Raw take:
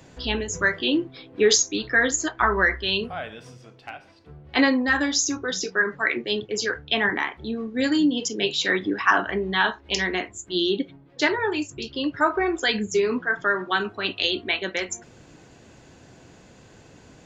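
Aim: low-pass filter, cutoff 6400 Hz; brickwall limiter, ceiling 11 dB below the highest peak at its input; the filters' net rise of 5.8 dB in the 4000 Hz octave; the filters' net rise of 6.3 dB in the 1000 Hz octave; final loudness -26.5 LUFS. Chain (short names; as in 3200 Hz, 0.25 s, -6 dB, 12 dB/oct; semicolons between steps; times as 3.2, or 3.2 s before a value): LPF 6400 Hz; bell 1000 Hz +7.5 dB; bell 4000 Hz +7.5 dB; gain -4 dB; limiter -14.5 dBFS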